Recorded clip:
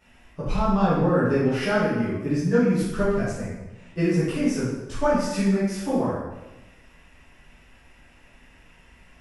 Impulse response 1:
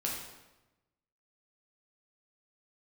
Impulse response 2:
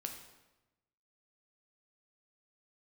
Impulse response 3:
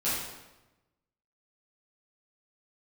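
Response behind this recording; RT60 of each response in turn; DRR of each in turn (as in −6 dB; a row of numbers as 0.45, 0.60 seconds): 3; 1.0, 1.0, 1.0 seconds; −3.5, 3.0, −12.0 decibels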